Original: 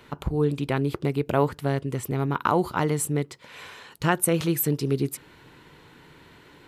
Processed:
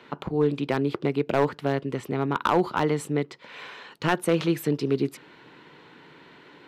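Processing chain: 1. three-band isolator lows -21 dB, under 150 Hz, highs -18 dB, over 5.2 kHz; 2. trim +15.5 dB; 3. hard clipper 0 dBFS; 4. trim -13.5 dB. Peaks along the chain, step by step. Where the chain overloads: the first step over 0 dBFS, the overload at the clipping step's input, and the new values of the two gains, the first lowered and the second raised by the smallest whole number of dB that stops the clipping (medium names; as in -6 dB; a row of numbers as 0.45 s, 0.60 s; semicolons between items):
-5.5 dBFS, +10.0 dBFS, 0.0 dBFS, -13.5 dBFS; step 2, 10.0 dB; step 2 +5.5 dB, step 4 -3.5 dB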